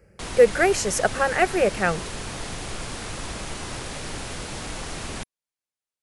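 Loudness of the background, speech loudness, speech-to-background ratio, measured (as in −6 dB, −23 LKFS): −33.0 LKFS, −21.5 LKFS, 11.5 dB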